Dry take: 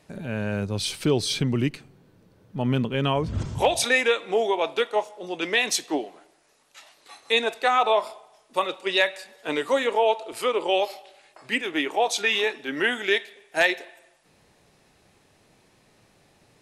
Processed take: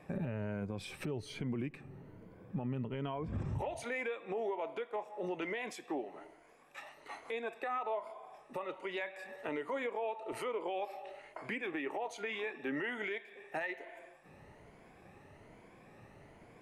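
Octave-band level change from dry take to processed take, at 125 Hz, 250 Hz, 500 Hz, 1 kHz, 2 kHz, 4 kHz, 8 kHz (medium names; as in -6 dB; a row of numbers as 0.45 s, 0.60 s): -12.0 dB, -11.5 dB, -14.5 dB, -15.0 dB, -16.0 dB, -23.5 dB, -24.0 dB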